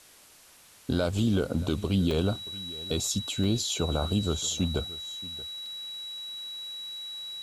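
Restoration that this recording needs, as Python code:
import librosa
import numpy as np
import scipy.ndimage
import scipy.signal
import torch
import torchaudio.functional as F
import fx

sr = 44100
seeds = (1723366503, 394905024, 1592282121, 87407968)

y = fx.notch(x, sr, hz=3900.0, q=30.0)
y = fx.fix_interpolate(y, sr, at_s=(2.11, 3.44, 5.66), length_ms=2.6)
y = fx.noise_reduce(y, sr, print_start_s=0.26, print_end_s=0.76, reduce_db=19.0)
y = fx.fix_echo_inverse(y, sr, delay_ms=628, level_db=-19.0)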